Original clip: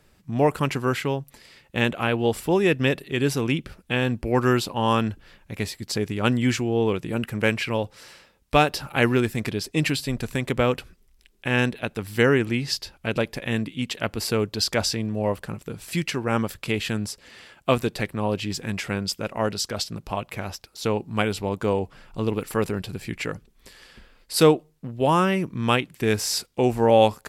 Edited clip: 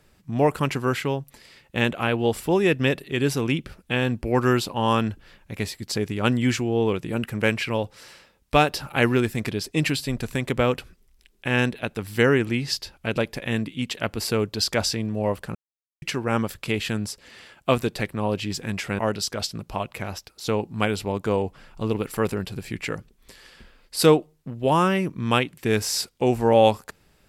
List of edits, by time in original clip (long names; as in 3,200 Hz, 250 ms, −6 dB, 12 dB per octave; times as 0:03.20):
0:15.55–0:16.02: silence
0:18.99–0:19.36: remove